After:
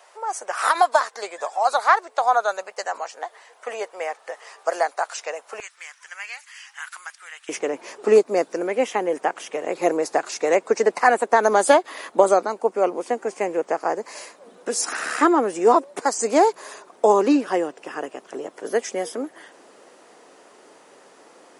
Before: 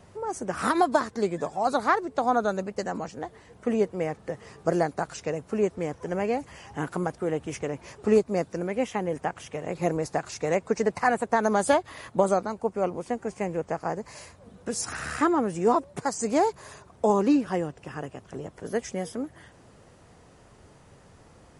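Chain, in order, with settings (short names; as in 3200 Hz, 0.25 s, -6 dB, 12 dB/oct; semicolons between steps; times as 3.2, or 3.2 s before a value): HPF 630 Hz 24 dB/oct, from 5.6 s 1500 Hz, from 7.49 s 300 Hz; gain +7 dB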